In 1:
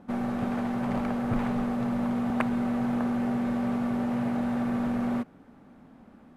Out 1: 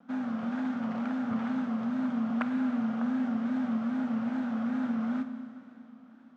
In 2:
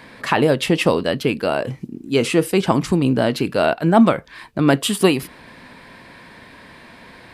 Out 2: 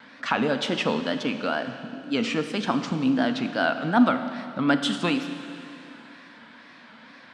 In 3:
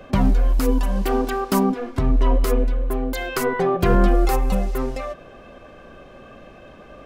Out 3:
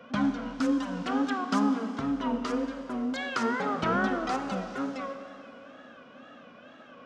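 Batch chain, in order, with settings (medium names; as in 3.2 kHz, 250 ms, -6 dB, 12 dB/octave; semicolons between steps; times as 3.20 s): cabinet simulation 200–6800 Hz, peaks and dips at 250 Hz +9 dB, 380 Hz -10 dB, 1.4 kHz +9 dB, 3.3 kHz +5 dB, 5.8 kHz +3 dB; wow and flutter 130 cents; Schroeder reverb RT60 2.8 s, combs from 31 ms, DRR 8.5 dB; trim -8 dB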